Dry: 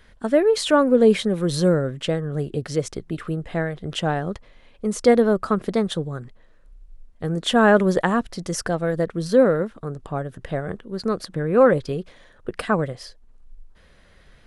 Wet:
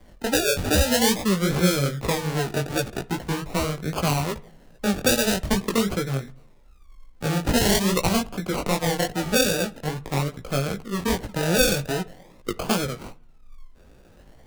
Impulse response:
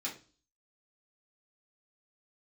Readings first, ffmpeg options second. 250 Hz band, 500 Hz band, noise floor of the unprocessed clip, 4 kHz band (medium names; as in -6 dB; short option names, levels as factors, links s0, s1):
-2.5 dB, -6.0 dB, -52 dBFS, +5.0 dB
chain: -filter_complex "[0:a]acrusher=samples=33:mix=1:aa=0.000001:lfo=1:lforange=19.8:lforate=0.45,acrossover=split=150|3000[s0][s1][s2];[s1]acompressor=threshold=0.0794:ratio=6[s3];[s0][s3][s2]amix=inputs=3:normalize=0,flanger=delay=15.5:depth=6.9:speed=2.5,asplit=2[s4][s5];[1:a]atrim=start_sample=2205,asetrate=23373,aresample=44100[s6];[s5][s6]afir=irnorm=-1:irlink=0,volume=0.075[s7];[s4][s7]amix=inputs=2:normalize=0,volume=1.78"